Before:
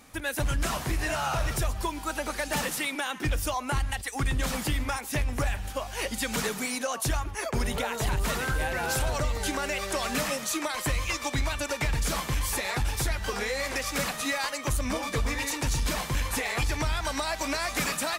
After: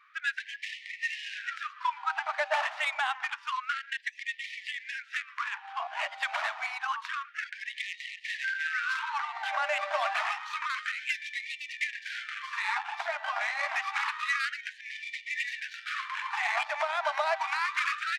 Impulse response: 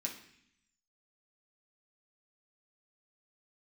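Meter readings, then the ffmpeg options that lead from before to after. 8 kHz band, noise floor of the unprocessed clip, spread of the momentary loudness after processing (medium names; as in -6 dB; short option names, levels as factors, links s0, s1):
-18.0 dB, -38 dBFS, 8 LU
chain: -af "lowpass=3700,adynamicsmooth=sensitivity=2.5:basefreq=1800,afftfilt=real='re*gte(b*sr/1024,560*pow(1800/560,0.5+0.5*sin(2*PI*0.28*pts/sr)))':imag='im*gte(b*sr/1024,560*pow(1800/560,0.5+0.5*sin(2*PI*0.28*pts/sr)))':win_size=1024:overlap=0.75,volume=1.68"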